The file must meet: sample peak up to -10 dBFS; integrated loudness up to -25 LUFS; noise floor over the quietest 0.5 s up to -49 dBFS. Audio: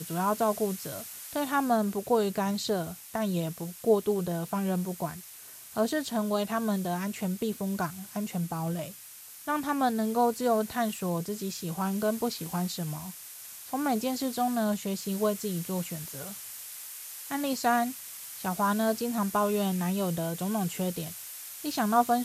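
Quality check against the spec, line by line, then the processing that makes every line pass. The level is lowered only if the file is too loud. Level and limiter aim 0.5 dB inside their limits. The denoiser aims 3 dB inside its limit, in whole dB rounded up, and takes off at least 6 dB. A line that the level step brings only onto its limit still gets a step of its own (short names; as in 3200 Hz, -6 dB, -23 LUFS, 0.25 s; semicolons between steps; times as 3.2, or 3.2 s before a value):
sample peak -11.0 dBFS: OK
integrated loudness -30.5 LUFS: OK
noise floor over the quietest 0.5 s -48 dBFS: fail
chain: denoiser 6 dB, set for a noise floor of -48 dBFS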